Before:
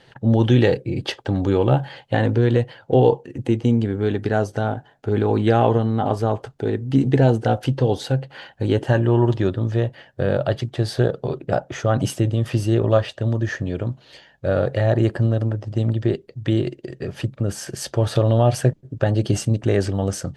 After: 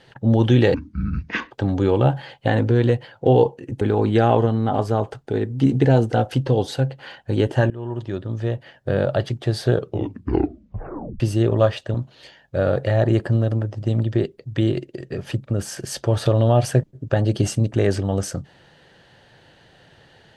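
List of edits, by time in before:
0.74–1.18 speed 57%
3.48–5.13 cut
9.02–10.21 fade in linear, from -19 dB
11.03 tape stop 1.49 s
13.26–13.84 cut

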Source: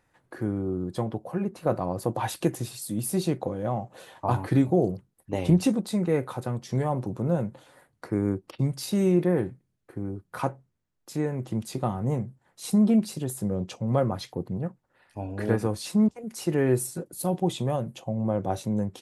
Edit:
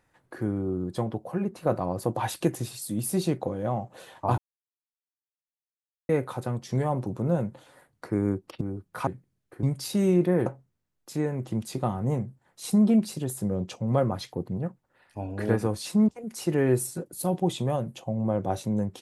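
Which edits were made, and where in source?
4.38–6.09 mute
8.61–9.44 swap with 10–10.46

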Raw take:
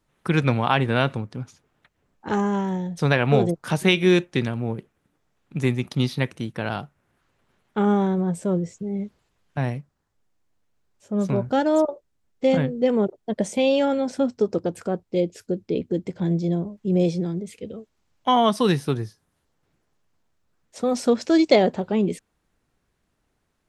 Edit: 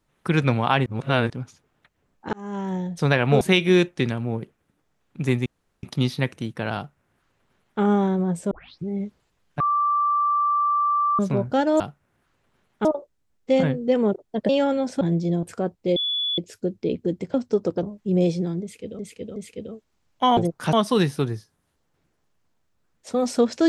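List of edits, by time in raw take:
0.86–1.3 reverse
2.33–2.79 fade in
3.41–3.77 move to 18.42
5.82 insert room tone 0.37 s
6.75–7.8 copy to 11.79
8.5 tape start 0.37 s
9.59–11.18 bleep 1170 Hz -18 dBFS
13.43–13.7 cut
14.22–14.71 swap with 16.2–16.62
15.24 add tone 3430 Hz -22 dBFS 0.42 s
17.41–17.78 loop, 3 plays

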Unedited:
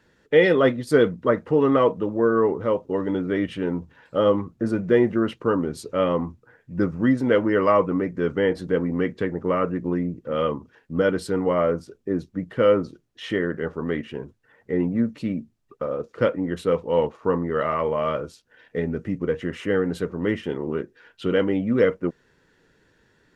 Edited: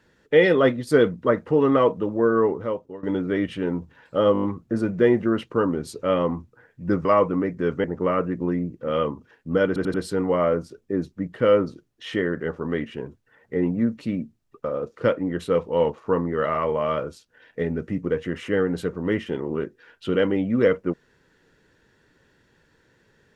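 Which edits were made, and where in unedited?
2.44–3.03 fade out, to -19.5 dB
4.33 stutter 0.02 s, 6 plays
6.95–7.63 cut
8.42–9.28 cut
11.11 stutter 0.09 s, 4 plays

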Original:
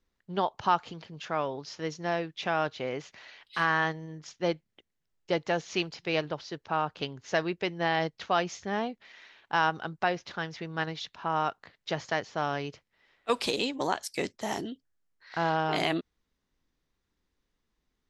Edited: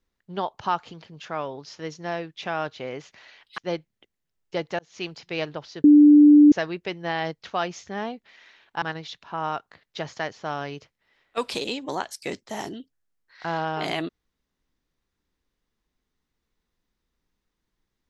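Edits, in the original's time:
3.58–4.34 cut
5.55–5.89 fade in
6.6–7.28 bleep 295 Hz -8.5 dBFS
9.58–10.74 cut

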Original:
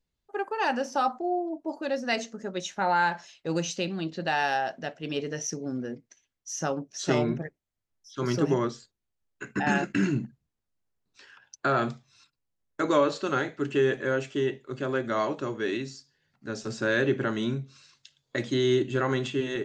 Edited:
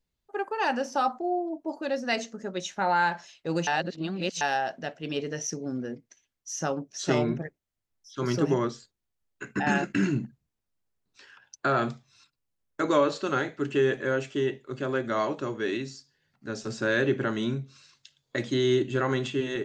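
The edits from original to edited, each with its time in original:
3.67–4.41 reverse

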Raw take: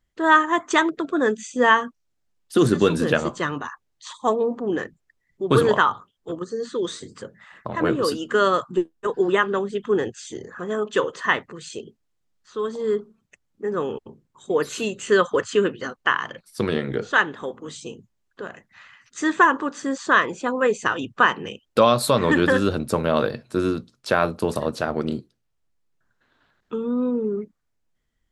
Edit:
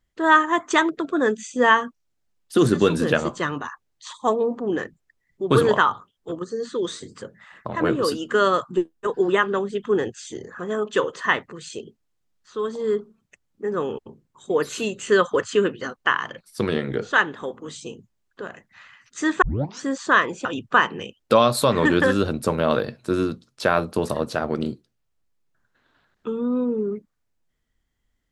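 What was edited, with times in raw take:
19.42 tape start 0.40 s
20.45–20.91 cut

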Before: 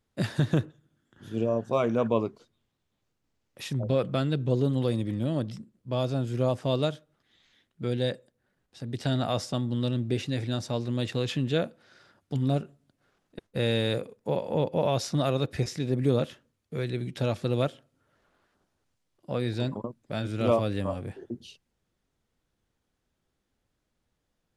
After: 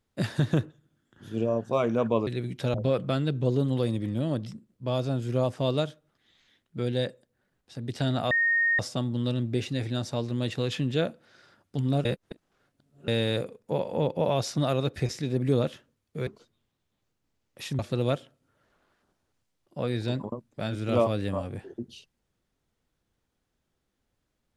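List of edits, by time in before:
2.27–3.79 swap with 16.84–17.31
9.36 add tone 1850 Hz -20.5 dBFS 0.48 s
12.62–13.65 reverse

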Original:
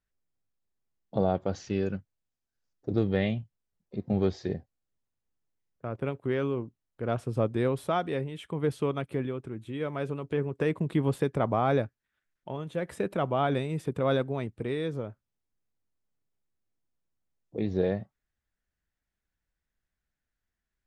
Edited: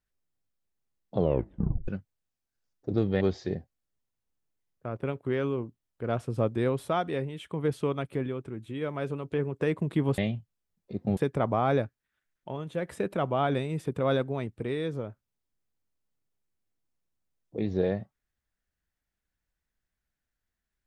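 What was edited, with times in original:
1.15 tape stop 0.73 s
3.21–4.2 move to 11.17

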